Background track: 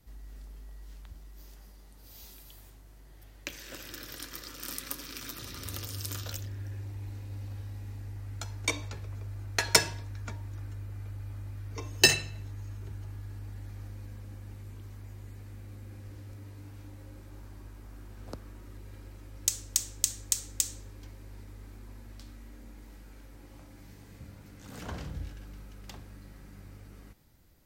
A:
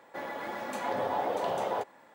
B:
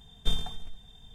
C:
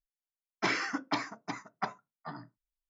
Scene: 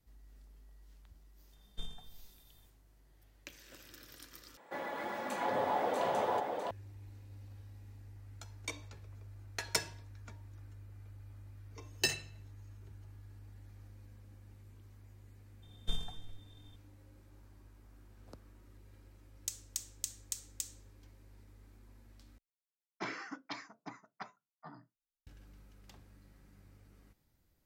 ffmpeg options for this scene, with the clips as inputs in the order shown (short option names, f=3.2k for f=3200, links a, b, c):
-filter_complex "[2:a]asplit=2[a][b];[0:a]volume=-11.5dB[c];[1:a]aecho=1:1:655:0.596[d];[3:a]acrossover=split=1600[e][f];[e]aeval=exprs='val(0)*(1-0.5/2+0.5/2*cos(2*PI*1.3*n/s))':c=same[g];[f]aeval=exprs='val(0)*(1-0.5/2-0.5/2*cos(2*PI*1.3*n/s))':c=same[h];[g][h]amix=inputs=2:normalize=0[i];[c]asplit=3[j][k][l];[j]atrim=end=4.574[m];[d]atrim=end=2.14,asetpts=PTS-STARTPTS,volume=-2.5dB[n];[k]atrim=start=6.706:end=22.384[o];[i]atrim=end=2.89,asetpts=PTS-STARTPTS,volume=-8.5dB[p];[l]atrim=start=25.266[q];[a]atrim=end=1.14,asetpts=PTS-STARTPTS,volume=-16dB,afade=t=in:d=0.004:c=hsin,afade=t=out:st=1.136:d=0.004:c=hsin,adelay=1520[r];[b]atrim=end=1.14,asetpts=PTS-STARTPTS,volume=-9dB,afade=t=in:d=0.004:c=hsin,afade=t=out:st=1.136:d=0.004:c=hsin,adelay=15620[s];[m][n]acrossfade=d=0.004:c1=hsin:c2=hsin[t];[t][o]acrossfade=d=0.004:c1=hsin:c2=hsin[u];[u][p]acrossfade=d=0.004:c1=hsin:c2=hsin[v];[v][q]acrossfade=d=0.004:c1=hsin:c2=hsin[w];[w][r][s]amix=inputs=3:normalize=0"